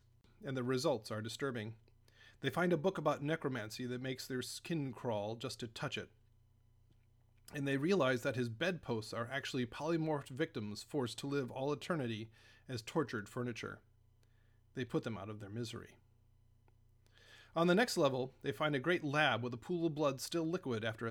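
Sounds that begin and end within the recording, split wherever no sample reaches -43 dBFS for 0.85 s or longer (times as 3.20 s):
7.48–13.74 s
14.77–15.85 s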